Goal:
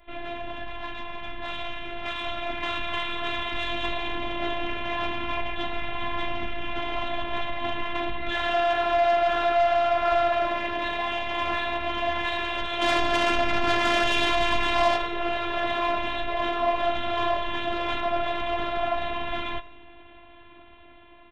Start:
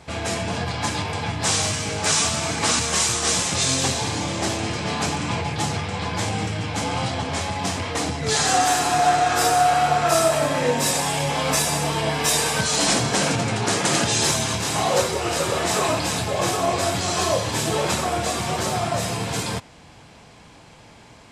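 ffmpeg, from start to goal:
-filter_complex "[0:a]flanger=delay=8.8:depth=3:regen=-46:speed=1.6:shape=triangular,volume=20.5dB,asoftclip=hard,volume=-20.5dB,asplit=3[a][b][c];[a]afade=t=out:st=12.81:d=0.02[d];[b]acontrast=81,afade=t=in:st=12.81:d=0.02,afade=t=out:st=14.96:d=0.02[e];[c]afade=t=in:st=14.96:d=0.02[f];[d][e][f]amix=inputs=3:normalize=0,aresample=8000,aresample=44100,asoftclip=type=tanh:threshold=-20dB,lowshelf=f=97:g=7,afftfilt=real='hypot(re,im)*cos(PI*b)':imag='0':win_size=512:overlap=0.75,aecho=1:1:86|172|258|344|430:0.1|0.059|0.0348|0.0205|0.0121,adynamicequalizer=threshold=0.00447:dfrequency=320:dqfactor=1.7:tfrequency=320:tqfactor=1.7:attack=5:release=100:ratio=0.375:range=3:mode=cutabove:tftype=bell,dynaudnorm=f=980:g=5:m=6.5dB"

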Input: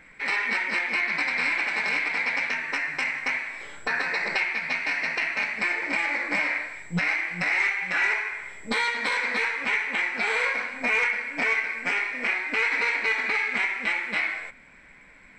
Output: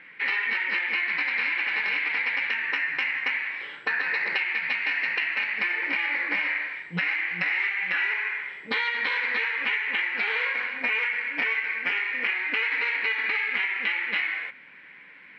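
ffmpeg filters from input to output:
-af "highpass=190,equalizer=f=230:t=q:w=4:g=-5,equalizer=f=650:t=q:w=4:g=-8,equalizer=f=1.8k:t=q:w=4:g=6,equalizer=f=2.9k:t=q:w=4:g=9,lowpass=f=4.2k:w=0.5412,lowpass=f=4.2k:w=1.3066,acompressor=threshold=-23dB:ratio=6"

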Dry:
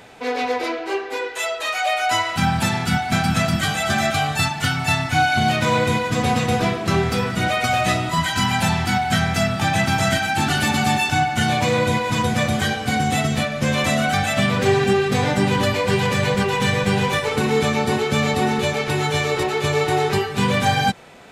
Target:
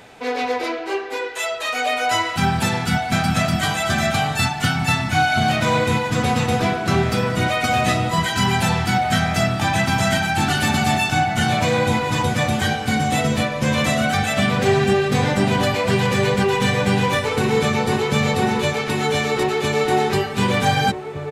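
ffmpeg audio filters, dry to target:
-filter_complex "[0:a]asplit=2[a][b];[b]adelay=1516,volume=-7dB,highshelf=f=4k:g=-34.1[c];[a][c]amix=inputs=2:normalize=0"

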